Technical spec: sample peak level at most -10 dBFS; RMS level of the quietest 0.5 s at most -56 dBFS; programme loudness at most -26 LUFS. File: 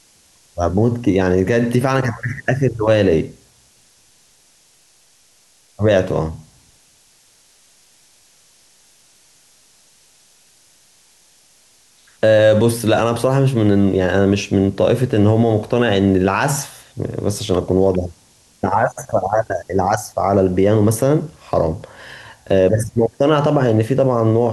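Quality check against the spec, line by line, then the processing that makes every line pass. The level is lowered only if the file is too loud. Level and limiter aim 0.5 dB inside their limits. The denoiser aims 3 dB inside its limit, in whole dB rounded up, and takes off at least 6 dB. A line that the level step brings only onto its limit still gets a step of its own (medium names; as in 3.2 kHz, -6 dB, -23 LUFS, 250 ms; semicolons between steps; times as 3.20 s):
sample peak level -4.5 dBFS: fail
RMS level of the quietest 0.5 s -54 dBFS: fail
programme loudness -17.0 LUFS: fail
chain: trim -9.5 dB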